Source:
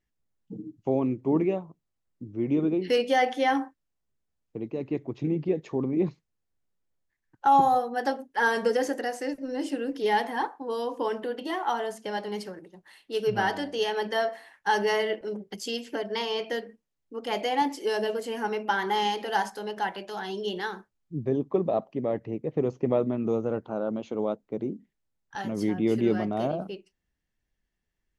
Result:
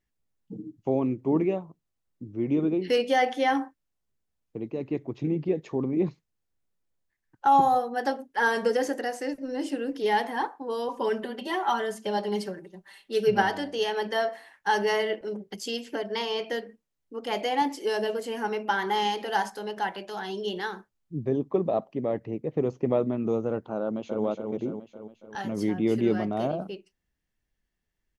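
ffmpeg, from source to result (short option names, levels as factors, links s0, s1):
-filter_complex "[0:a]asettb=1/sr,asplit=3[s0][s1][s2];[s0]atrim=end=10.884[s3];[s1]atrim=start=10.88:end=13.42,asetpts=PTS-STARTPTS,afade=t=in:d=0.004:c=qsin,afade=t=out:st=2.536:d=0.004:c=qsin,aecho=1:1:5.1:0.85,atrim=end_sample=112014[s4];[s2]atrim=start=13.416[s5];[s3][s4]acrossfade=d=0.004:c1=hsin:c2=qsin[s6];[s6][s5]acrossfade=d=0.004:c1=qsin:c2=hsin,asplit=2[s7][s8];[s8]afade=t=in:st=23.81:d=0.01,afade=t=out:st=24.23:d=0.01,aecho=0:1:280|560|840|1120|1400|1680|1960|2240:0.562341|0.337405|0.202443|0.121466|0.0728794|0.0437277|0.0262366|0.015742[s9];[s7][s9]amix=inputs=2:normalize=0"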